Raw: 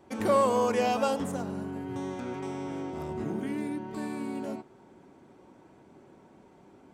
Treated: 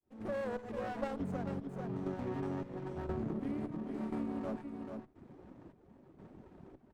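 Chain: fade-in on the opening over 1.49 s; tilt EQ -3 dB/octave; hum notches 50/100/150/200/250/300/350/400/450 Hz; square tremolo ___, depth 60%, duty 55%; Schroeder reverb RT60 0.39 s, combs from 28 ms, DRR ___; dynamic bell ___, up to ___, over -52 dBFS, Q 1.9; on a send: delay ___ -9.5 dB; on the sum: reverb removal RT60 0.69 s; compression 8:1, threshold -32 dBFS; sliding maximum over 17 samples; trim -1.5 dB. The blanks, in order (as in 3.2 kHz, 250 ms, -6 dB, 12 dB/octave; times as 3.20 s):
0.97 Hz, 17.5 dB, 840 Hz, +5 dB, 440 ms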